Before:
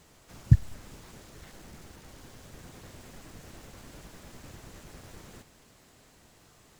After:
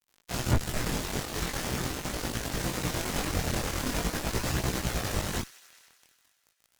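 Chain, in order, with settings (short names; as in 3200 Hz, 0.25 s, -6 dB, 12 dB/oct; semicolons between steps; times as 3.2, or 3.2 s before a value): fuzz box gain 43 dB, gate -49 dBFS; thin delay 95 ms, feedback 77%, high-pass 1600 Hz, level -18 dB; chorus voices 2, 0.43 Hz, delay 20 ms, depth 4.6 ms; gain -3 dB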